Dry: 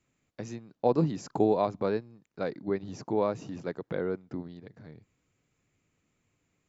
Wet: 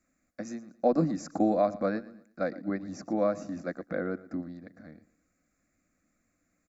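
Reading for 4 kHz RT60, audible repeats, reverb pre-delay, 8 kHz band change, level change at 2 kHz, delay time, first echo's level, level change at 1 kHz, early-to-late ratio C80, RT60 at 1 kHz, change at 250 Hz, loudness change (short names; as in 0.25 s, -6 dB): none, 2, none, n/a, +3.0 dB, 0.116 s, -18.5 dB, 0.0 dB, none, none, +2.0 dB, 0.0 dB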